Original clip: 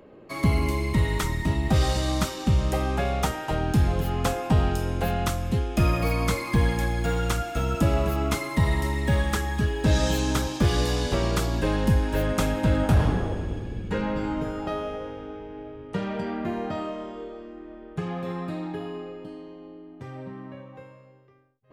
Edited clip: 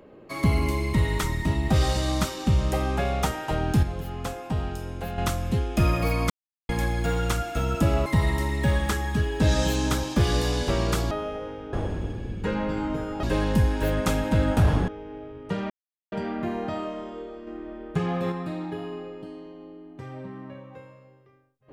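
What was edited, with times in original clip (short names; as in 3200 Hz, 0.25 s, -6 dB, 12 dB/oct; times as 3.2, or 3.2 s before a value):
3.83–5.18 gain -7 dB
6.3–6.69 mute
8.06–8.5 cut
11.55–13.2 swap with 14.7–15.32
16.14 insert silence 0.42 s
17.49–18.34 gain +4.5 dB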